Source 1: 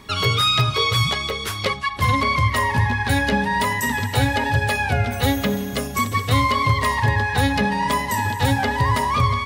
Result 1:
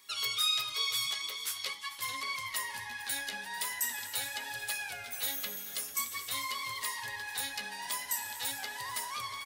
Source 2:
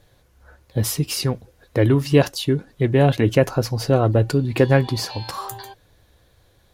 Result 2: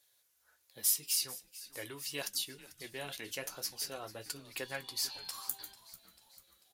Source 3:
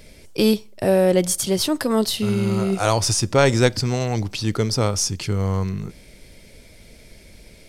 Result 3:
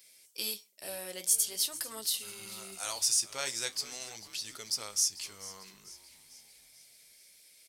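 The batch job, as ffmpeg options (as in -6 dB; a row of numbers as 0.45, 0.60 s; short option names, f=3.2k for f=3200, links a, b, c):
-filter_complex "[0:a]flanger=delay=6.9:depth=9.1:regen=-52:speed=0.44:shape=triangular,aderivative,asplit=6[a][b][c][d][e][f];[b]adelay=443,afreqshift=-120,volume=-17dB[g];[c]adelay=886,afreqshift=-240,volume=-22.5dB[h];[d]adelay=1329,afreqshift=-360,volume=-28dB[i];[e]adelay=1772,afreqshift=-480,volume=-33.5dB[j];[f]adelay=2215,afreqshift=-600,volume=-39.1dB[k];[a][g][h][i][j][k]amix=inputs=6:normalize=0"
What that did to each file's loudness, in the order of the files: -14.0, -17.0, -11.5 LU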